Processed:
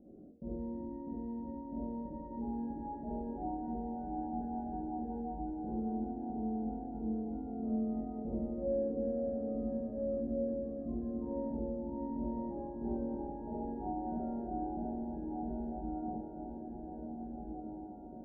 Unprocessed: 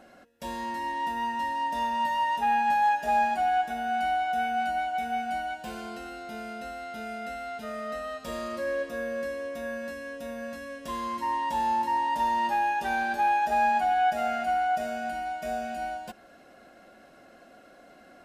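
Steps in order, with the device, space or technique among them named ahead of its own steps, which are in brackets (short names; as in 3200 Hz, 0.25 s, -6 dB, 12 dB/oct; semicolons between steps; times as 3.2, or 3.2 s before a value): next room (LPF 380 Hz 24 dB/oct; reverb RT60 0.50 s, pre-delay 40 ms, DRR -5 dB); diffused feedback echo 1.596 s, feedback 48%, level -4.5 dB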